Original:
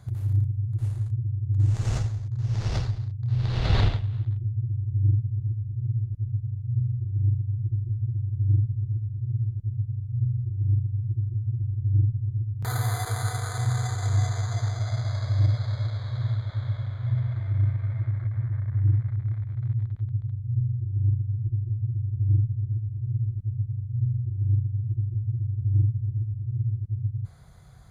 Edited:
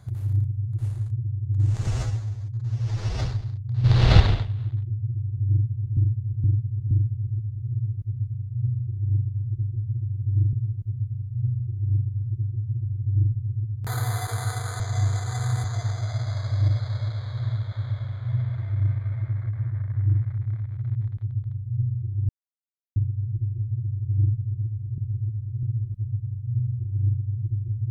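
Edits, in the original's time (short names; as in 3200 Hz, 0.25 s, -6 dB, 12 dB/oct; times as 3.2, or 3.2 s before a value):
1.87–2.79 stretch 1.5×
3.38–3.74 gain +8.5 dB
5.04–5.51 loop, 4 plays
8.66–9.31 move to 23.09
13.58–14.42 reverse
21.07 insert silence 0.67 s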